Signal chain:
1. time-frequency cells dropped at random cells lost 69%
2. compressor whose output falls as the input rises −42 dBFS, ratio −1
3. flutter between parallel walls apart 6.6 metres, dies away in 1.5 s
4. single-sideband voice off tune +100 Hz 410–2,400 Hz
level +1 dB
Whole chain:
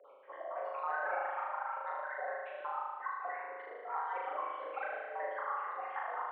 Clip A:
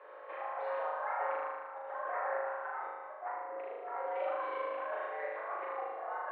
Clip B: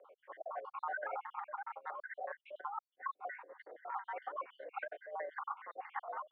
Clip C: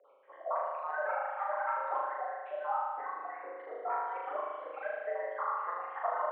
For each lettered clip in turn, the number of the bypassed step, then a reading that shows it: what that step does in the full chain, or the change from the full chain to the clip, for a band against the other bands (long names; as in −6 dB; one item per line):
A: 1, change in momentary loudness spread +2 LU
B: 3, change in crest factor +2.5 dB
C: 2, change in integrated loudness +3.0 LU